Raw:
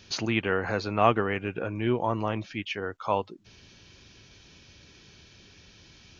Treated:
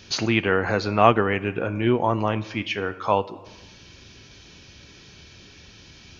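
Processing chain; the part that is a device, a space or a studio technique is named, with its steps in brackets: compressed reverb return (on a send at -8 dB: reverb RT60 0.90 s, pre-delay 14 ms + compressor, threshold -33 dBFS, peak gain reduction 13.5 dB); on the sum: gain +5.5 dB

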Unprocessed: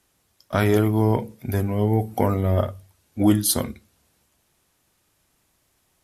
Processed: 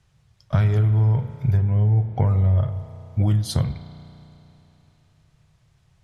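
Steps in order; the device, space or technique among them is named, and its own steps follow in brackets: 1.57–2.27 Bessel low-pass 2800 Hz, order 2; jukebox (LPF 5700 Hz 12 dB/oct; resonant low shelf 190 Hz +11 dB, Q 3; compressor 4:1, threshold -17 dBFS, peak gain reduction 11 dB); spring tank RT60 3.3 s, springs 33 ms, chirp 20 ms, DRR 10 dB

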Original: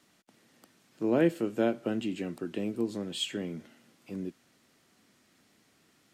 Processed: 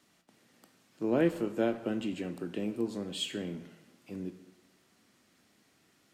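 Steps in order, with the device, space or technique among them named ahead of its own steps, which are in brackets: saturated reverb return (on a send at -7.5 dB: reverb RT60 1.0 s, pre-delay 15 ms + soft clip -30.5 dBFS, distortion -8 dB); on the sum: gain -2 dB

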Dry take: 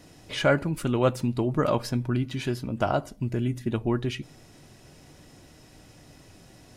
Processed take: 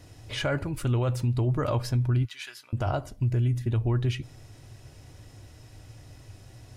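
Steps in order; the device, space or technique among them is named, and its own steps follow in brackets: 2.25–2.73 Chebyshev high-pass 1600 Hz, order 2; car stereo with a boomy subwoofer (resonant low shelf 140 Hz +6.5 dB, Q 3; limiter -17 dBFS, peak gain reduction 8.5 dB); gain -1.5 dB

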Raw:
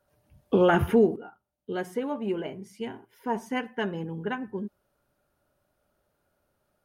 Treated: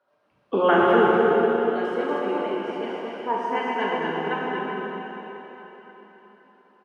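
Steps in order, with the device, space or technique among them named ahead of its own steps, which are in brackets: station announcement (BPF 310–4000 Hz; bell 1100 Hz +6 dB 0.58 oct; loudspeakers at several distances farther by 13 m -11 dB, 82 m -4 dB; reverb RT60 4.0 s, pre-delay 20 ms, DRR -3.5 dB); bell 6500 Hz -3 dB 0.33 oct

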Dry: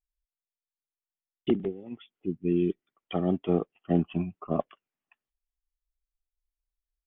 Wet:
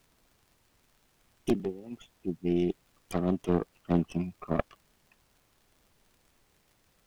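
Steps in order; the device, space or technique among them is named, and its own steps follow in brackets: record under a worn stylus (tracing distortion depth 0.41 ms; crackle; pink noise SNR 34 dB); gain -2 dB

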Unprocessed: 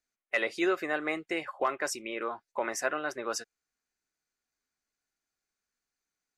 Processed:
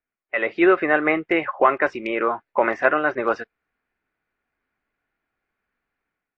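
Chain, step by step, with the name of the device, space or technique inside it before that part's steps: action camera in a waterproof case (LPF 2500 Hz 24 dB/oct; AGC gain up to 11 dB; gain +2 dB; AAC 48 kbps 32000 Hz)

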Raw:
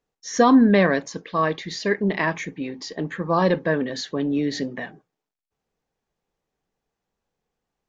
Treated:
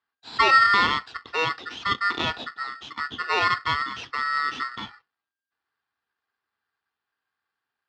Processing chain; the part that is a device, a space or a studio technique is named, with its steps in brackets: ring modulator pedal into a guitar cabinet (polarity switched at an audio rate 1600 Hz; speaker cabinet 86–3900 Hz, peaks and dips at 170 Hz -9 dB, 570 Hz -9 dB, 2200 Hz -10 dB)

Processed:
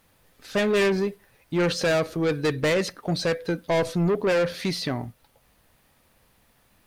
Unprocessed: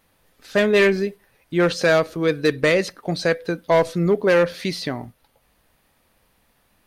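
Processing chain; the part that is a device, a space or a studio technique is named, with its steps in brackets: open-reel tape (soft clip -18.5 dBFS, distortion -10 dB; bell 110 Hz +3.5 dB 1.17 oct; white noise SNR 47 dB)

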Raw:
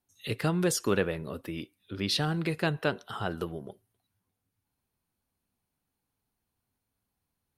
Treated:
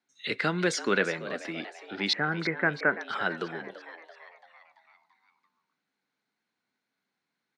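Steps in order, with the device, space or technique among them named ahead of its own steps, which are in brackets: television speaker (speaker cabinet 180–6900 Hz, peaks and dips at 1500 Hz +9 dB, 2100 Hz +10 dB, 3900 Hz +6 dB); 2.13–3.01 steep low-pass 2200 Hz 72 dB/oct; frequency-shifting echo 0.337 s, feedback 55%, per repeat +120 Hz, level -14 dB

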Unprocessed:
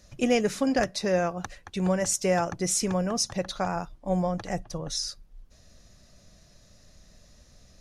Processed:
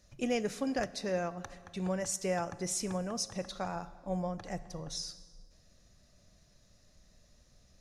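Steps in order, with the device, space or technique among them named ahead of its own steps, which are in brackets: compressed reverb return (on a send at -11.5 dB: reverb RT60 1.5 s, pre-delay 22 ms + compressor, threshold -27 dBFS, peak gain reduction 8 dB); on the sum: gain -8.5 dB

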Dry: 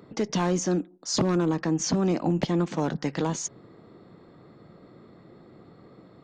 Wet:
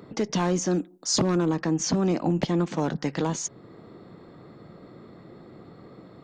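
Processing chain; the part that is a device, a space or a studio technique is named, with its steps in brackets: 0.73–1.19 high shelf 4800 Hz -> 7800 Hz +9.5 dB; parallel compression (in parallel at -4.5 dB: compressor, threshold -44 dBFS, peak gain reduction 21.5 dB)

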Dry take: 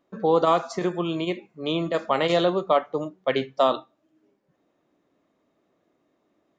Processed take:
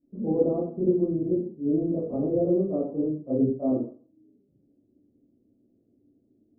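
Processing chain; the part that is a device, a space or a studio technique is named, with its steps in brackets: next room (LPF 340 Hz 24 dB/oct; reverb RT60 0.40 s, pre-delay 23 ms, DRR -12 dB); gain -3.5 dB

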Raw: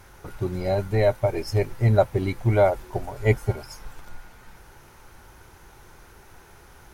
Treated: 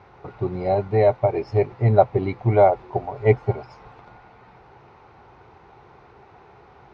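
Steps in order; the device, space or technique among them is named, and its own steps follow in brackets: guitar cabinet (speaker cabinet 85–3700 Hz, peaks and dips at 130 Hz +4 dB, 430 Hz +6 dB, 750 Hz +8 dB, 1100 Hz +4 dB, 1600 Hz -6 dB, 3200 Hz -6 dB)

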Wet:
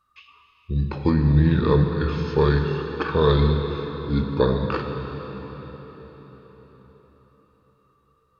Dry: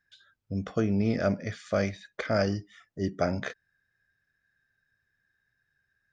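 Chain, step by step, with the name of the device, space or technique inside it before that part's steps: slowed and reverbed (varispeed -27%; reverb RT60 4.9 s, pre-delay 3 ms, DRR 3.5 dB); gain +6.5 dB

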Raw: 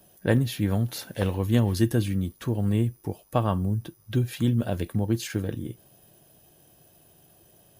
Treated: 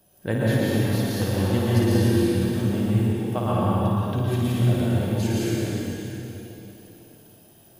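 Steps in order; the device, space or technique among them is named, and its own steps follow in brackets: tunnel (flutter echo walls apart 9.5 m, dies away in 0.57 s; reverb RT60 3.5 s, pre-delay 0.111 s, DRR -7 dB); gain -4.5 dB

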